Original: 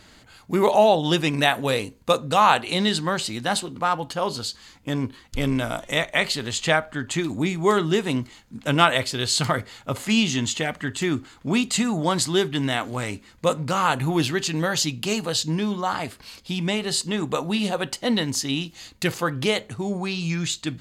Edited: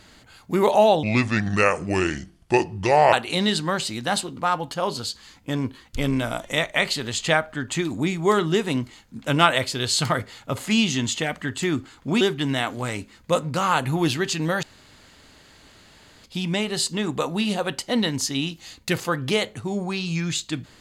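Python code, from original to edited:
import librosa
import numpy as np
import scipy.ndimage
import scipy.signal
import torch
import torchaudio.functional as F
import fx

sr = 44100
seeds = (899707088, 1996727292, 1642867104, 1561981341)

y = fx.edit(x, sr, fx.speed_span(start_s=1.03, length_s=1.49, speed=0.71),
    fx.cut(start_s=11.6, length_s=0.75),
    fx.room_tone_fill(start_s=14.77, length_s=1.61), tone=tone)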